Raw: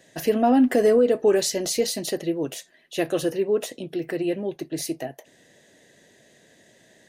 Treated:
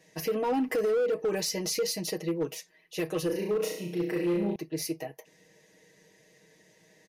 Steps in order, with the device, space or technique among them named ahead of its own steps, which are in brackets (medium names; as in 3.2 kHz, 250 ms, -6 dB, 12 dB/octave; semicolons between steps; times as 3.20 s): rippled EQ curve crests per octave 0.83, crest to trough 8 dB; comb 6.4 ms, depth 79%; 3.26–4.56 s: flutter echo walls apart 5.9 m, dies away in 0.6 s; limiter into clipper (peak limiter -12.5 dBFS, peak gain reduction 8.5 dB; hard clipper -16 dBFS, distortion -18 dB); trim -7 dB